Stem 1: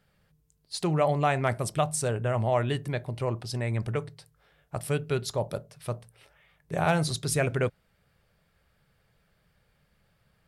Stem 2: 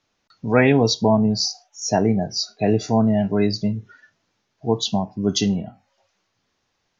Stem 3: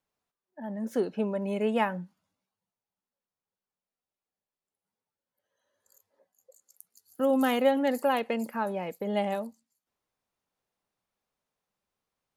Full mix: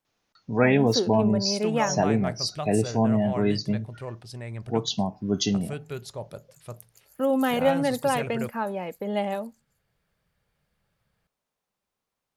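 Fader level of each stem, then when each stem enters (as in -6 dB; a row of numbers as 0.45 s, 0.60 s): -7.0 dB, -4.5 dB, +1.5 dB; 0.80 s, 0.05 s, 0.00 s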